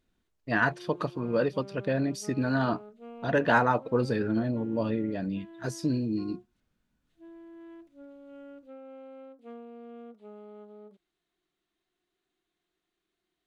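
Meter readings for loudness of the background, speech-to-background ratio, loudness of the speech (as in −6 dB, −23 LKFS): −48.0 LKFS, 19.0 dB, −29.0 LKFS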